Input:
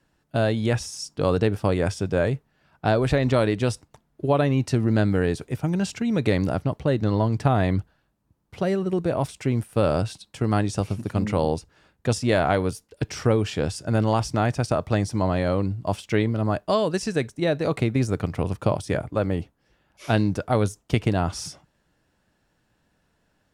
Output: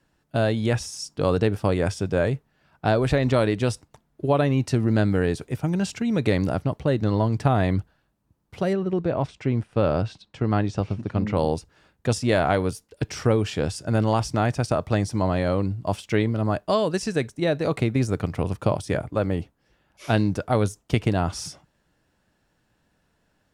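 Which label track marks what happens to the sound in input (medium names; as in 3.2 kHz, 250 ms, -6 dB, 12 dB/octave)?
8.730000	11.370000	distance through air 140 m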